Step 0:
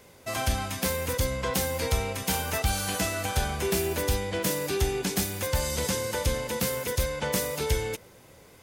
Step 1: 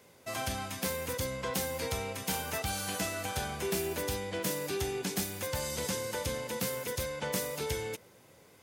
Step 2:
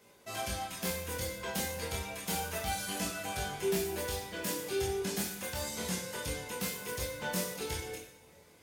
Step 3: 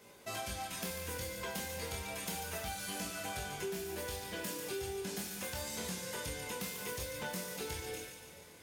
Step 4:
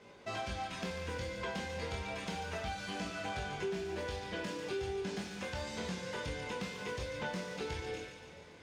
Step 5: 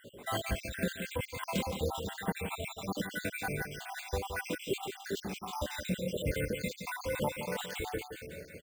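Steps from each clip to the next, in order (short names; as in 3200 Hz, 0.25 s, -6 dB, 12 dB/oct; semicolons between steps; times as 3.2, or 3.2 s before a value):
HPF 100 Hz 12 dB/oct; gain -5.5 dB
reverb removal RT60 0.72 s; chorus 0.3 Hz, delay 20 ms, depth 5.3 ms; two-slope reverb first 0.67 s, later 2.8 s, from -20 dB, DRR -0.5 dB
compressor, threshold -41 dBFS, peak gain reduction 13 dB; on a send: thin delay 0.144 s, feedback 61%, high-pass 1400 Hz, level -8 dB; on the sum: gain +3 dB
air absorption 140 m; gain +3 dB
random spectral dropouts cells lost 73%; careless resampling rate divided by 4×, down filtered, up hold; echo 0.17 s -8.5 dB; gain +9 dB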